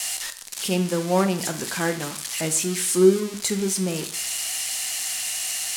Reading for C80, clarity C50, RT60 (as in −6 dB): 16.5 dB, 12.5 dB, 0.55 s